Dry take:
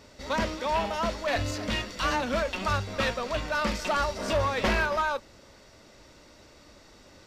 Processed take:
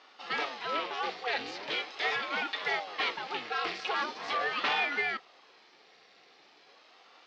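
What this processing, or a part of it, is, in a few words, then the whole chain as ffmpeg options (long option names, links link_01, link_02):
voice changer toy: -af "aeval=exprs='val(0)*sin(2*PI*490*n/s+490*0.75/0.41*sin(2*PI*0.41*n/s))':channel_layout=same,highpass=590,equalizer=frequency=610:width_type=q:width=4:gain=-7,equalizer=frequency=970:width_type=q:width=4:gain=-7,equalizer=frequency=1500:width_type=q:width=4:gain=-5,lowpass=frequency=4400:width=0.5412,lowpass=frequency=4400:width=1.3066,volume=3dB"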